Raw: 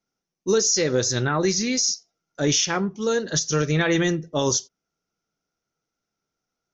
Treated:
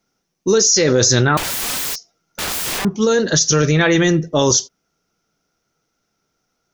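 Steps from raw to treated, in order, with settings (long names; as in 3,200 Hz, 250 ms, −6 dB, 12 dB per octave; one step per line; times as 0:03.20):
in parallel at −1.5 dB: compressor whose output falls as the input rises −25 dBFS, ratio −0.5
0:01.37–0:02.85: on the sum: wrap-around overflow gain 22.5 dB
level +4.5 dB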